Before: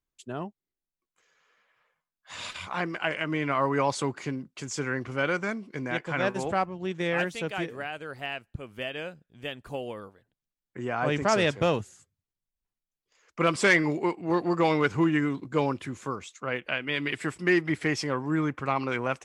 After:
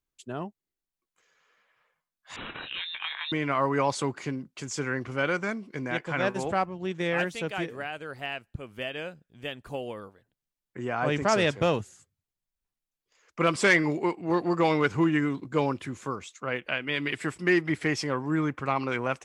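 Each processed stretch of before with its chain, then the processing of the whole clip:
0:02.36–0:03.32: downward compressor 2 to 1, threshold −33 dBFS + double-tracking delay 26 ms −14 dB + voice inversion scrambler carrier 3,900 Hz
whole clip: no processing

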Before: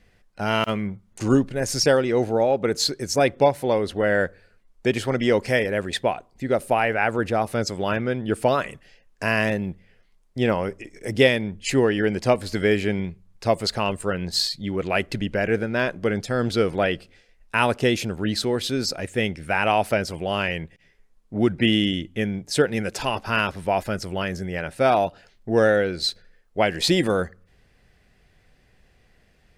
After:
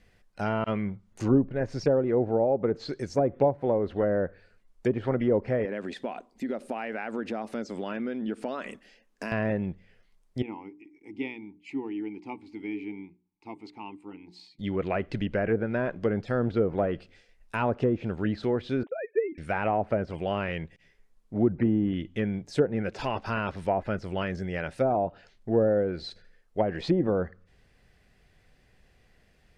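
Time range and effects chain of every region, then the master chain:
0:05.65–0:09.32: downward compressor 5 to 1, threshold −28 dBFS + low shelf with overshoot 170 Hz −9.5 dB, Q 3
0:10.42–0:14.59: formant filter u + mains-hum notches 60/120/180/240/300/360/420 Hz
0:18.83–0:19.38: three sine waves on the formant tracks + low-pass filter 1,500 Hz + noise gate −47 dBFS, range −7 dB
whole clip: de-essing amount 95%; treble cut that deepens with the level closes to 750 Hz, closed at −17 dBFS; level −3 dB

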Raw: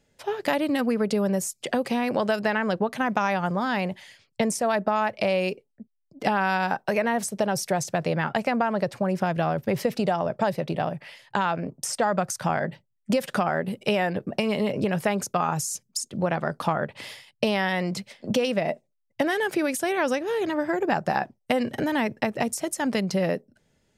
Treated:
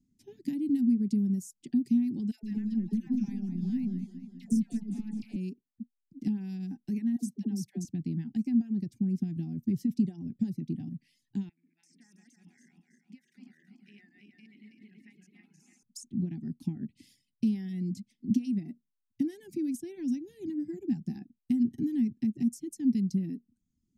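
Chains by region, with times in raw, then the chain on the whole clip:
0:02.31–0:05.36: gain on one half-wave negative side −3 dB + all-pass dispersion lows, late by 123 ms, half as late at 850 Hz + feedback echo with a swinging delay time 205 ms, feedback 57%, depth 66 cents, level −9 dB
0:07.16–0:07.85: high-pass filter 140 Hz + all-pass dispersion lows, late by 72 ms, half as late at 510 Hz
0:11.49–0:15.83: feedback delay that plays each chunk backwards 163 ms, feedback 67%, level −1 dB + resonant band-pass 2,000 Hz, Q 3.4
whole clip: inverse Chebyshev band-stop filter 480–1,200 Hz, stop band 40 dB; reverb reduction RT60 0.64 s; drawn EQ curve 140 Hz 0 dB, 240 Hz +10 dB, 360 Hz +1 dB, 930 Hz +13 dB, 1,400 Hz −24 dB, 3,400 Hz −19 dB, 6,000 Hz −8 dB, 8,700 Hz −10 dB; level −6 dB

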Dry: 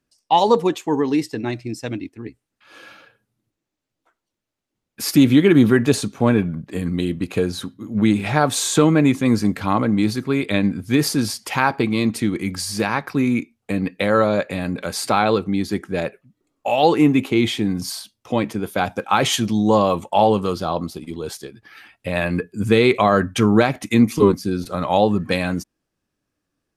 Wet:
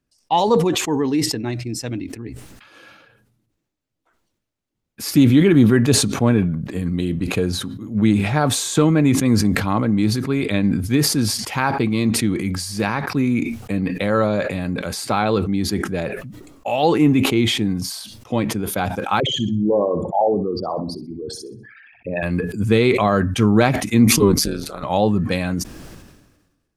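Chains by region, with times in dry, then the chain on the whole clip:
0:19.20–0:22.23: spectral envelope exaggerated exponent 3 + high-pass filter 140 Hz 6 dB per octave + flutter between parallel walls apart 10.8 metres, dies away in 0.32 s
0:24.36–0:24.83: high-pass filter 520 Hz 6 dB per octave + amplitude modulation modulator 150 Hz, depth 75%
whole clip: low-shelf EQ 180 Hz +7.5 dB; level that may fall only so fast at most 47 dB per second; level −3 dB

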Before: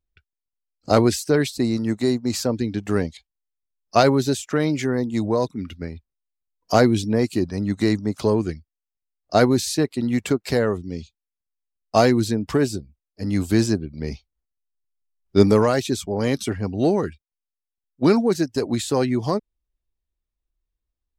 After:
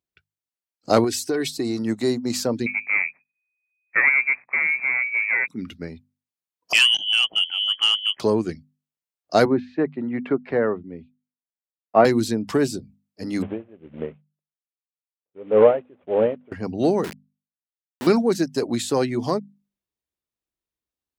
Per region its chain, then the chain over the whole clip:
0:01.04–0:01.79: comb filter 2.7 ms, depth 53% + downward compressor 4 to 1, threshold −20 dBFS
0:02.66–0:05.48: running median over 41 samples + voice inversion scrambler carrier 2,500 Hz
0:06.73–0:08.20: voice inversion scrambler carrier 3,200 Hz + saturating transformer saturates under 3,600 Hz
0:09.45–0:12.05: low-pass filter 2,100 Hz 24 dB per octave + parametric band 110 Hz −5.5 dB 1.4 octaves + multiband upward and downward expander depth 40%
0:13.42–0:16.52: variable-slope delta modulation 16 kbit/s + parametric band 530 Hz +13 dB 0.81 octaves + tremolo with a sine in dB 1.8 Hz, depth 30 dB
0:17.04–0:18.07: downward compressor, threshold −32 dBFS + log-companded quantiser 2 bits
whole clip: high-pass filter 140 Hz 12 dB per octave; mains-hum notches 50/100/150/200/250 Hz

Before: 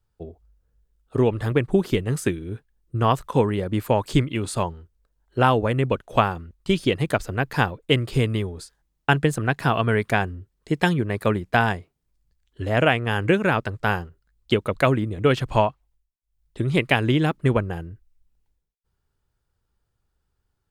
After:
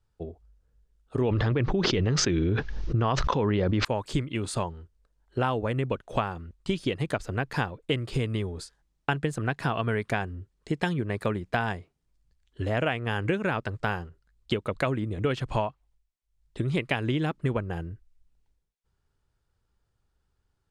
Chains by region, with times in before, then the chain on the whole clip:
0:01.21–0:03.85: Butterworth low-pass 6,000 Hz 48 dB per octave + envelope flattener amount 100%
whole clip: low-pass filter 9,000 Hz 12 dB per octave; downward compressor 2.5 to 1, threshold −27 dBFS

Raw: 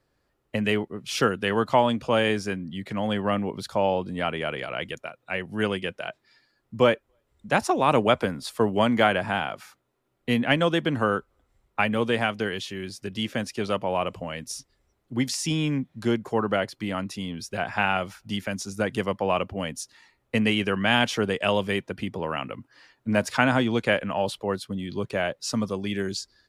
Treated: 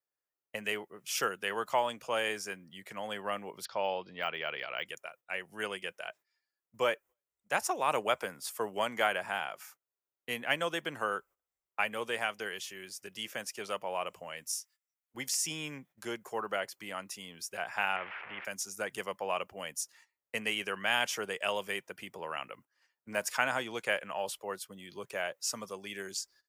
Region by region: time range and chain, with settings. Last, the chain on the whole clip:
0:03.65–0:04.86: Butterworth low-pass 5,000 Hz 48 dB per octave + de-essing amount 80% + high-shelf EQ 3,500 Hz +9 dB
0:14.51–0:15.14: high-pass filter 1,300 Hz + double-tracking delay 19 ms −6 dB
0:17.96–0:18.45: spike at every zero crossing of −20 dBFS + Butterworth low-pass 2,300 Hz 48 dB per octave + every bin compressed towards the loudest bin 2 to 1
whole clip: RIAA equalisation recording; noise gate −46 dBFS, range −15 dB; graphic EQ with 15 bands 100 Hz −5 dB, 250 Hz −8 dB, 4,000 Hz −10 dB, 10,000 Hz −5 dB; level −7.5 dB

